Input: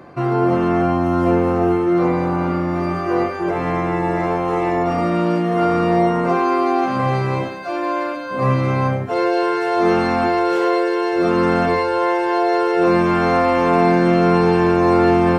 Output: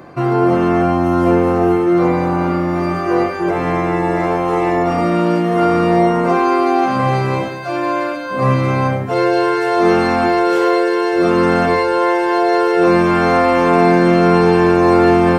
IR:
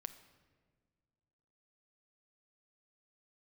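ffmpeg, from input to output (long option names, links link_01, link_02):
-filter_complex "[0:a]asplit=2[link_01][link_02];[1:a]atrim=start_sample=2205,highshelf=frequency=5700:gain=11[link_03];[link_02][link_03]afir=irnorm=-1:irlink=0,volume=0dB[link_04];[link_01][link_04]amix=inputs=2:normalize=0,volume=-1dB"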